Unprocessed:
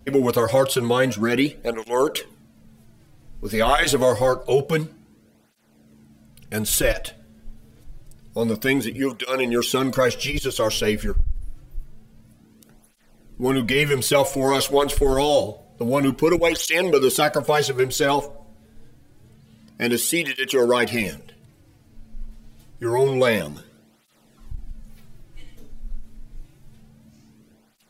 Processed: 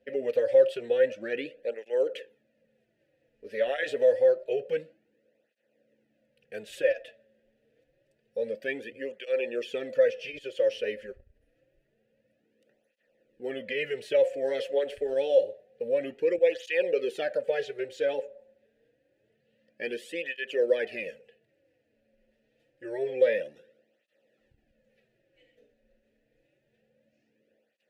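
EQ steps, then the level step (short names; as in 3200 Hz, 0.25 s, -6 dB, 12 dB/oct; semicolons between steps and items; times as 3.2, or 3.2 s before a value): vowel filter e; 0.0 dB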